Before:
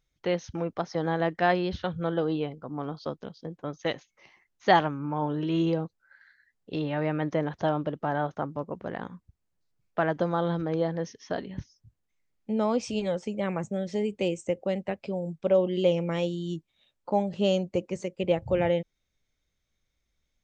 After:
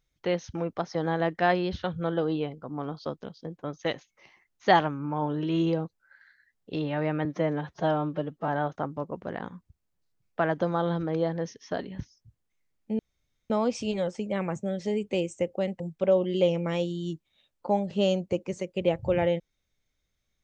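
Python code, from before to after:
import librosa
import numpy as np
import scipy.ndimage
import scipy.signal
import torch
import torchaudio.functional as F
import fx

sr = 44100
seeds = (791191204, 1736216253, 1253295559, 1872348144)

y = fx.edit(x, sr, fx.stretch_span(start_s=7.25, length_s=0.82, factor=1.5),
    fx.insert_room_tone(at_s=12.58, length_s=0.51),
    fx.cut(start_s=14.88, length_s=0.35), tone=tone)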